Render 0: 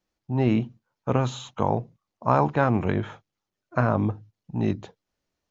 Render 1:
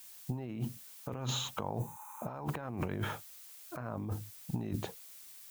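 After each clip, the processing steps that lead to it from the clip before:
background noise blue −55 dBFS
compressor whose output falls as the input rises −32 dBFS, ratio −1
healed spectral selection 0:01.82–0:02.31, 800–5,900 Hz both
level −5.5 dB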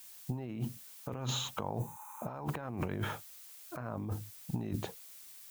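no processing that can be heard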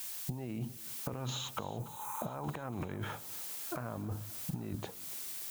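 downward compressor 10 to 1, threshold −46 dBFS, peak gain reduction 17 dB
feedback echo with a high-pass in the loop 288 ms, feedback 78%, high-pass 240 Hz, level −18.5 dB
level +10.5 dB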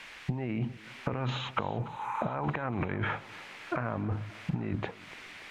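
low-pass with resonance 2,200 Hz, resonance Q 2.2
level +6.5 dB

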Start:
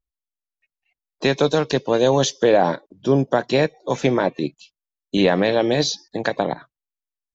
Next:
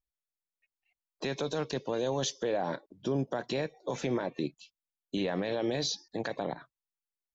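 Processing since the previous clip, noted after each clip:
brickwall limiter −15 dBFS, peak gain reduction 10 dB
level −7 dB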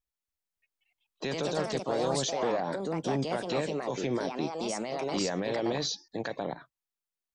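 delay with pitch and tempo change per echo 285 ms, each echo +3 semitones, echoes 2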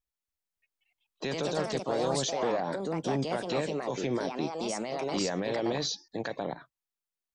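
no processing that can be heard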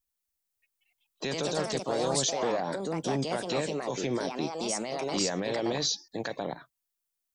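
high-shelf EQ 5,900 Hz +10.5 dB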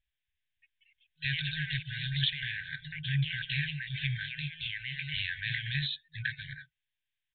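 brick-wall band-stop 160–1,500 Hz
downsampling to 8,000 Hz
level +7 dB

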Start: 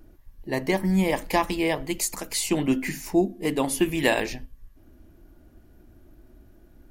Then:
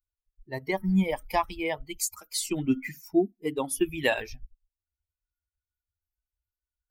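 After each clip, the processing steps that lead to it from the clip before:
spectral dynamics exaggerated over time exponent 2
noise reduction from a noise print of the clip's start 22 dB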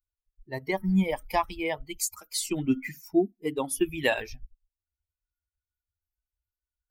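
no processing that can be heard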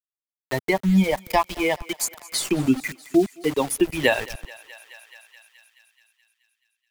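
centre clipping without the shift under −37.5 dBFS
feedback echo with a high-pass in the loop 214 ms, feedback 68%, high-pass 660 Hz, level −21.5 dB
multiband upward and downward compressor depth 40%
level +6.5 dB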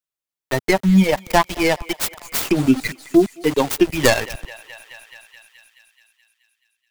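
stylus tracing distortion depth 0.43 ms
level +4.5 dB

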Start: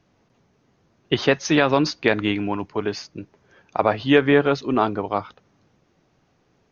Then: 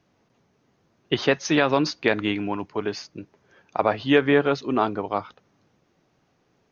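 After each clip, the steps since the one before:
low-shelf EQ 79 Hz −7.5 dB
level −2 dB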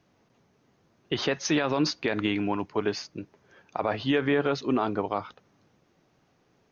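brickwall limiter −14.5 dBFS, peak gain reduction 9 dB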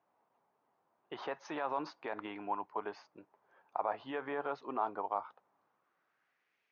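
band-pass filter sweep 900 Hz → 2,300 Hz, 0:05.51–0:06.60
level −2 dB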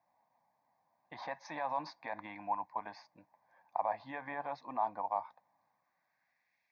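phaser with its sweep stopped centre 2,000 Hz, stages 8
level +2.5 dB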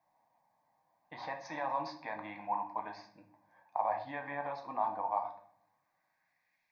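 rectangular room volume 100 cubic metres, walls mixed, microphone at 0.52 metres

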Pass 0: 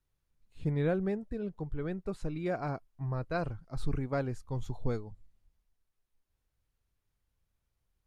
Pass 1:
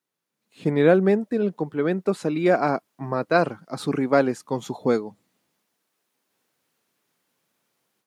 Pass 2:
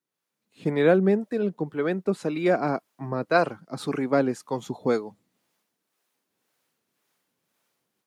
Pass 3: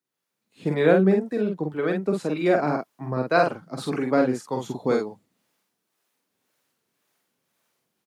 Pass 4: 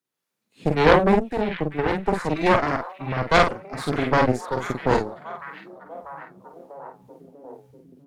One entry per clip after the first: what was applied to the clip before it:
high-pass filter 200 Hz 24 dB per octave; automatic gain control gain up to 12 dB; level +3 dB
two-band tremolo in antiphase 1.9 Hz, depth 50%, crossover 410 Hz
double-tracking delay 47 ms −3.5 dB
harmonic generator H 6 −9 dB, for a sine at −4 dBFS; echo through a band-pass that steps 644 ms, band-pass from 2,500 Hz, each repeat −0.7 octaves, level −10 dB

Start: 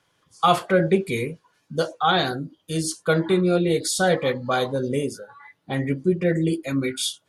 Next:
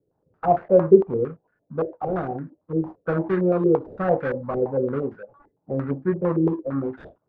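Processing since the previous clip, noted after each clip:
running median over 41 samples
low-pass on a step sequencer 8.8 Hz 420–1,600 Hz
level −2.5 dB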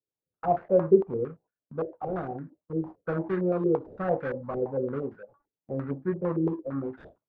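noise gate with hold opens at −39 dBFS
level −6 dB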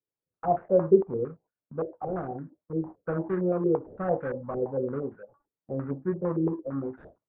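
low-pass filter 1,600 Hz 12 dB per octave

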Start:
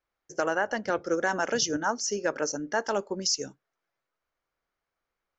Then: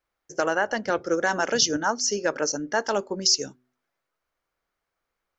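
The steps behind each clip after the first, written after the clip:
dynamic equaliser 4,200 Hz, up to +6 dB, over −44 dBFS, Q 1.5
hum removal 124.9 Hz, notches 3
level +3 dB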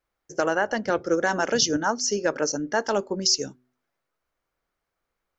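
low-shelf EQ 490 Hz +4.5 dB
level −1 dB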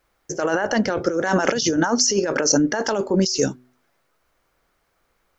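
compressor whose output falls as the input rises −29 dBFS, ratio −1
level +9 dB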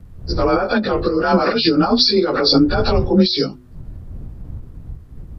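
partials spread apart or drawn together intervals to 92%
wind on the microphone 80 Hz −34 dBFS
every ending faded ahead of time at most 170 dB per second
level +7 dB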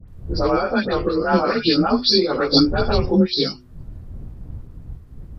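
all-pass dispersion highs, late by 81 ms, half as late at 1,600 Hz
level −2.5 dB

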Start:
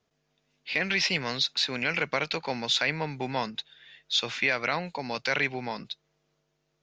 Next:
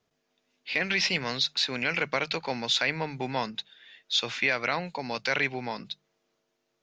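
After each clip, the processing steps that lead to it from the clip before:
mains-hum notches 50/100/150/200 Hz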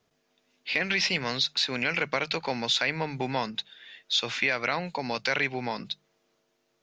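downward compressor 1.5 to 1, threshold −33 dBFS, peak gain reduction 5 dB
level +4 dB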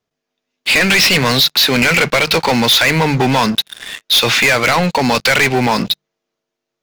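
leveller curve on the samples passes 5
level +4 dB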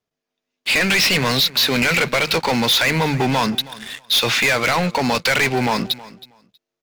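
repeating echo 320 ms, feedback 18%, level −19 dB
level −5 dB

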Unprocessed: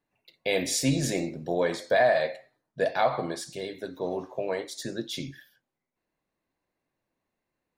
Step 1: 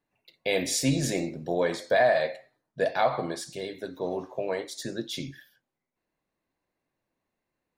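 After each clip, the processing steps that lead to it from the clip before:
no processing that can be heard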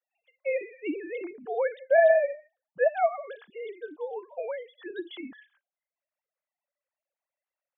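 three sine waves on the formant tracks

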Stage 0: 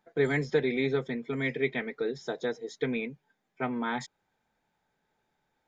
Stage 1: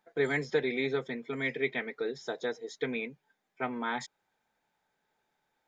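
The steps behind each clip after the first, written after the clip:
low-shelf EQ 270 Hz −9 dB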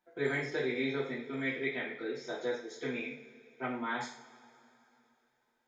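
coupled-rooms reverb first 0.47 s, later 3.1 s, from −21 dB, DRR −6 dB
level −9 dB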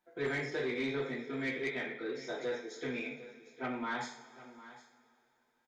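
soft clipping −27.5 dBFS, distortion −17 dB
single-tap delay 755 ms −16.5 dB

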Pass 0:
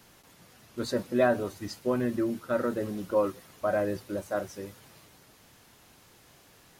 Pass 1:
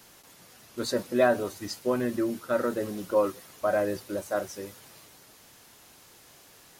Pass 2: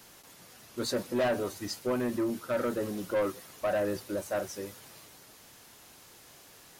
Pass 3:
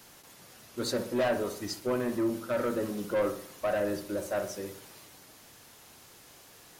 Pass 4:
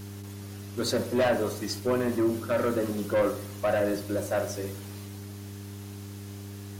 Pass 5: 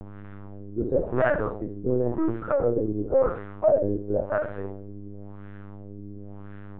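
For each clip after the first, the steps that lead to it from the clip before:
bass and treble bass −5 dB, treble +4 dB; level +2 dB
soft clipping −23.5 dBFS, distortion −10 dB
feedback echo with a low-pass in the loop 62 ms, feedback 50%, low-pass 1,600 Hz, level −8 dB
hum with harmonics 100 Hz, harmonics 4, −44 dBFS −6 dB per octave; level +3.5 dB
linear-prediction vocoder at 8 kHz pitch kept; auto-filter low-pass sine 0.95 Hz 330–1,600 Hz

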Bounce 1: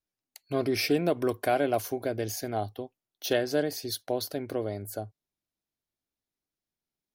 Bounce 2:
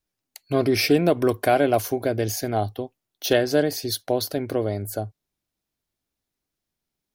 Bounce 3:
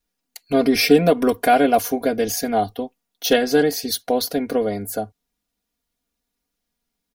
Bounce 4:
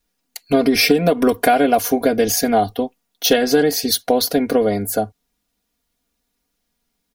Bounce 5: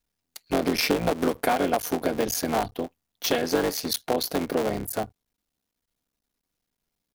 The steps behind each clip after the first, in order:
low-shelf EQ 120 Hz +5 dB; level +6.5 dB
comb filter 4.2 ms, depth 93%; level +1.5 dB
downward compressor 12 to 1, threshold −16 dBFS, peak gain reduction 9.5 dB; level +6 dB
sub-harmonics by changed cycles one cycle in 3, muted; level −7.5 dB

